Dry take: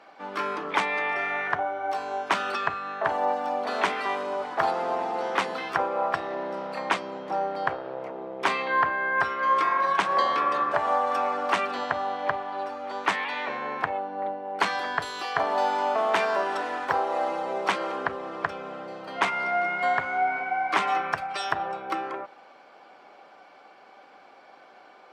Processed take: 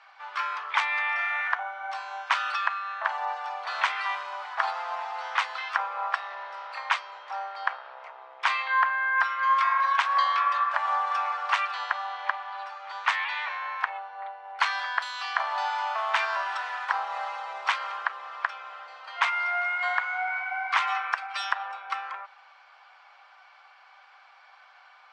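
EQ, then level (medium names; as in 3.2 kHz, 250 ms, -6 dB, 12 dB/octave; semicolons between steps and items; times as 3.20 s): high-pass 950 Hz 24 dB/octave; low-pass 5.7 kHz 12 dB/octave; +1.5 dB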